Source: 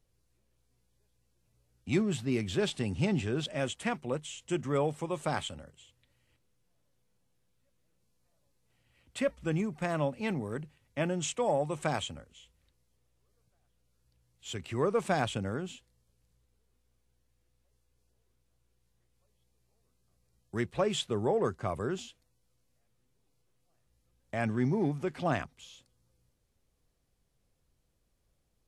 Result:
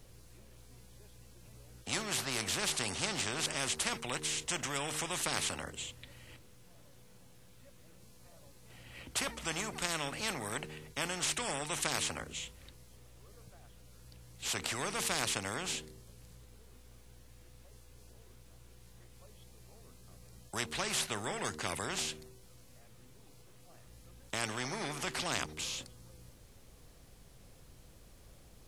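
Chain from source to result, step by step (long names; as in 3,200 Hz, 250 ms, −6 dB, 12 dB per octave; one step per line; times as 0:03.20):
hum removal 76.71 Hz, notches 6
every bin compressed towards the loudest bin 4 to 1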